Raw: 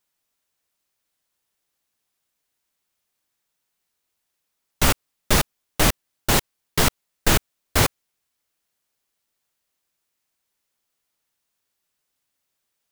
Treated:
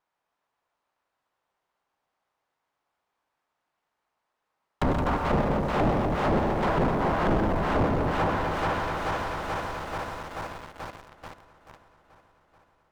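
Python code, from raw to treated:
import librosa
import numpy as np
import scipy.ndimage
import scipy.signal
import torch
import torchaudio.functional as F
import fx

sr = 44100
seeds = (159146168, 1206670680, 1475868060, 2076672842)

p1 = fx.reverse_delay_fb(x, sr, ms=217, feedback_pct=81, wet_db=-8.5)
p2 = fx.dynamic_eq(p1, sr, hz=210.0, q=1.0, threshold_db=-35.0, ratio=4.0, max_db=5)
p3 = fx.env_lowpass_down(p2, sr, base_hz=510.0, full_db=-16.5)
p4 = fx.peak_eq(p3, sr, hz=920.0, db=13.0, octaves=1.9)
p5 = fx.echo_multitap(p4, sr, ms=(99, 129, 169, 250), db=(-12.5, -11.5, -11.5, -10.0))
p6 = fx.quant_companded(p5, sr, bits=2)
p7 = p5 + (p6 * 10.0 ** (-4.0 / 20.0))
p8 = 10.0 ** (-15.0 / 20.0) * np.tanh(p7 / 10.0 ** (-15.0 / 20.0))
p9 = fx.lowpass(p8, sr, hz=2000.0, slope=6)
p10 = fx.running_max(p9, sr, window=3)
y = p10 * 10.0 ** (-4.0 / 20.0)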